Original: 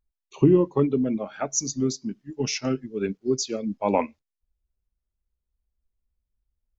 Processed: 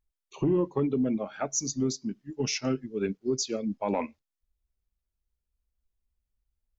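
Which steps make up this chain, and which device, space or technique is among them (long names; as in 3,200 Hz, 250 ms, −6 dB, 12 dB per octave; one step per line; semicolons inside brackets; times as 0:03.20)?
soft clipper into limiter (soft clipping −8.5 dBFS, distortion −21 dB; brickwall limiter −16.5 dBFS, peak gain reduction 7 dB)
level −2 dB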